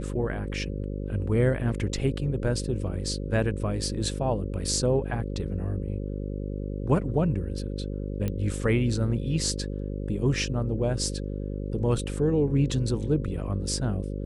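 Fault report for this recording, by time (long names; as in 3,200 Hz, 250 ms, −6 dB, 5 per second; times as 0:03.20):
mains buzz 50 Hz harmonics 11 −32 dBFS
0:08.28: click −17 dBFS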